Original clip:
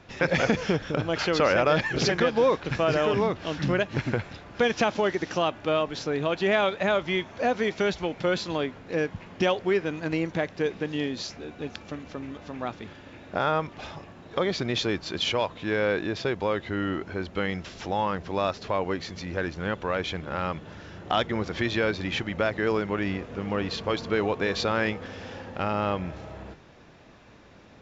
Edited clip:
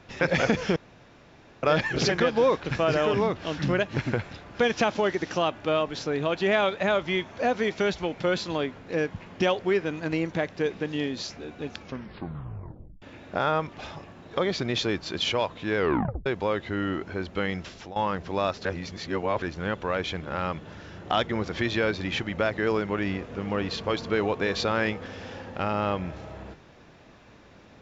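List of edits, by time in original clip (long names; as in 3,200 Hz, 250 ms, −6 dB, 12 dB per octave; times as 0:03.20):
0:00.76–0:01.63: fill with room tone
0:11.80: tape stop 1.22 s
0:15.77: tape stop 0.49 s
0:17.67–0:17.96: fade out, to −16 dB
0:18.65–0:19.42: reverse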